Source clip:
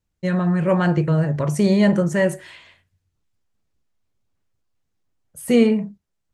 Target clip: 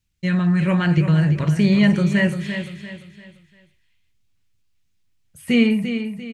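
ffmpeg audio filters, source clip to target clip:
-filter_complex "[0:a]acrossover=split=3300[s0][s1];[s1]acompressor=threshold=0.00355:ratio=4:attack=1:release=60[s2];[s0][s2]amix=inputs=2:normalize=0,firequalizer=gain_entry='entry(120,0);entry(510,-12);entry(2400,5);entry(7300,2)':delay=0.05:min_phase=1,asplit=2[s3][s4];[s4]aecho=0:1:344|688|1032|1376:0.355|0.131|0.0486|0.018[s5];[s3][s5]amix=inputs=2:normalize=0,volume=1.5"

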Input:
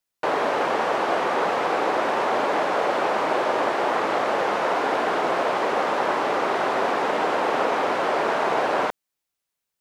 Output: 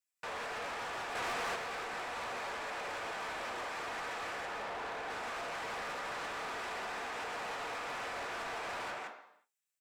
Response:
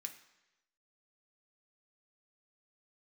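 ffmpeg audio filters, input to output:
-filter_complex "[0:a]asettb=1/sr,asplit=3[s0][s1][s2];[s0]atrim=end=4.454[s3];[s1]atrim=start=4.45:end=5.1,asetpts=PTS-STARTPTS,afade=t=in:d=0.004:c=qsin,afade=t=out:st=0.646:d=0.004:c=qsin,highshelf=f=2000:g=-9.5[s4];[s2]atrim=start=5.096[s5];[s3][s4]acrossfade=d=0.004:c1=hsin:c2=qsin[s6];[s6][s5]acrossfade=d=0.004:c1=qsin:c2=hsin[s7];[1:a]atrim=start_sample=2205,afade=t=out:st=0.43:d=0.01,atrim=end_sample=19404[s8];[s7][s8]afir=irnorm=-1:irlink=0,alimiter=limit=0.0794:level=0:latency=1:release=119,highpass=f=430:p=1,aecho=1:1:170:0.562,flanger=delay=5.6:depth=9.2:regen=-67:speed=1.4:shape=triangular,asoftclip=type=hard:threshold=0.0158,asettb=1/sr,asplit=3[s9][s10][s11];[s9]atrim=end=1.154[s12];[s10]atrim=start=1.15:end=1.56,asetpts=PTS-STARTPTS,afade=t=in:d=0.004:c=qsin,afade=t=out:st=0.406:d=0.004:c=qsin,acontrast=87[s13];[s11]atrim=start=1.556[s14];[s12][s13]acrossfade=d=0.004:c1=hsin:c2=qsin[s15];[s15][s14]acrossfade=d=0.004:c1=qsin:c2=hsin,asoftclip=type=tanh:threshold=0.02"

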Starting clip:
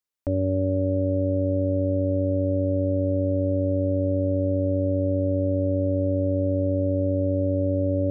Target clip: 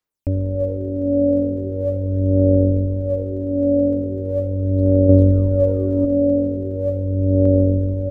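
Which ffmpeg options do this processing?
-filter_complex "[0:a]asettb=1/sr,asplit=3[s0][s1][s2];[s0]atrim=end=5.094[s3];[s1]atrim=start=5.09:end=6.05,asetpts=PTS-STARTPTS,afade=t=in:d=0.004:c=qsin,afade=t=out:st=0.956:d=0.004:c=qsin,acontrast=32[s4];[s2]atrim=start=6.046[s5];[s3][s4]acrossfade=d=0.004:c1=hsin:c2=qsin[s6];[s6][s5]acrossfade=d=0.004:c1=qsin:c2=hsin,aphaser=in_gain=1:out_gain=1:delay=3.5:decay=0.67:speed=0.4:type=sinusoidal,asplit=6[s7][s8][s9][s10][s11][s12];[s8]adelay=83,afreqshift=-44,volume=0.141[s13];[s9]adelay=166,afreqshift=-88,volume=0.0804[s14];[s10]adelay=249,afreqshift=-132,volume=0.0457[s15];[s11]adelay=332,afreqshift=-176,volume=0.0263[s16];[s12]adelay=415,afreqshift=-220,volume=0.015[s17];[s7][s13][s14][s15][s16][s17]amix=inputs=6:normalize=0"

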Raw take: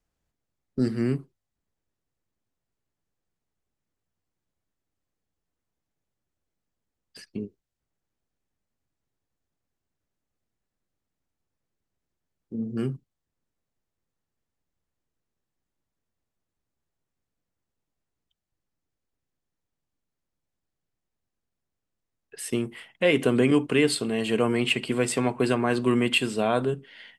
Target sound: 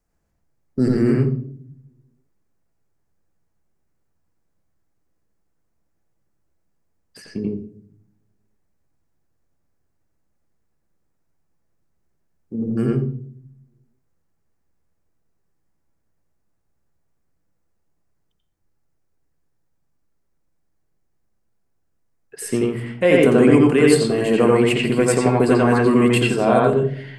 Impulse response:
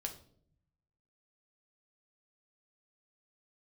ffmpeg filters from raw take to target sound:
-filter_complex "[0:a]equalizer=f=3300:t=o:w=1:g=-9.5,asplit=2[s0][s1];[1:a]atrim=start_sample=2205,lowpass=5100,adelay=87[s2];[s1][s2]afir=irnorm=-1:irlink=0,volume=1.41[s3];[s0][s3]amix=inputs=2:normalize=0,volume=1.88"

